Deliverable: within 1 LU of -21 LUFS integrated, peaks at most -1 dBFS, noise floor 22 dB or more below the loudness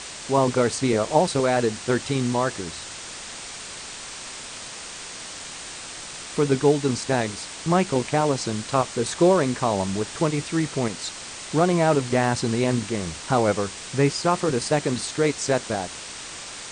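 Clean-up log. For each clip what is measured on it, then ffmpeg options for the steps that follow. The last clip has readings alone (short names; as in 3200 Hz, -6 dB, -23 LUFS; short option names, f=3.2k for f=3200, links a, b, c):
noise floor -37 dBFS; noise floor target -46 dBFS; loudness -24.0 LUFS; peak -5.5 dBFS; loudness target -21.0 LUFS
-> -af "afftdn=nr=9:nf=-37"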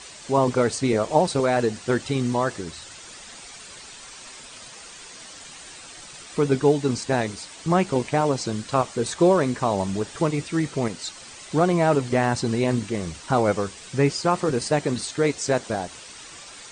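noise floor -43 dBFS; noise floor target -46 dBFS
-> -af "afftdn=nr=6:nf=-43"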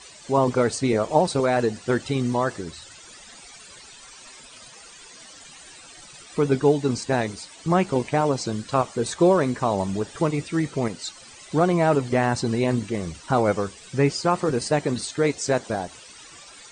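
noise floor -46 dBFS; loudness -23.5 LUFS; peak -5.5 dBFS; loudness target -21.0 LUFS
-> -af "volume=2.5dB"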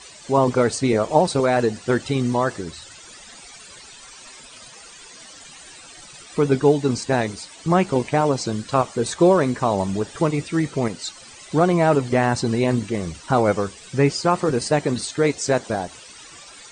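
loudness -21.0 LUFS; peak -3.0 dBFS; noise floor -44 dBFS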